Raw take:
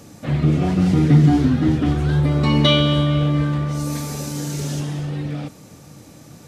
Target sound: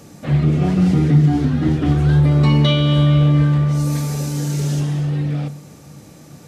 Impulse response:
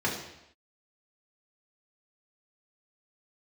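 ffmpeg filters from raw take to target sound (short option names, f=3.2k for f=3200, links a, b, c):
-filter_complex "[0:a]alimiter=limit=-9dB:level=0:latency=1:release=302,asplit=2[a][b];[1:a]atrim=start_sample=2205,lowshelf=f=330:g=8[c];[b][c]afir=irnorm=-1:irlink=0,volume=-24dB[d];[a][d]amix=inputs=2:normalize=0"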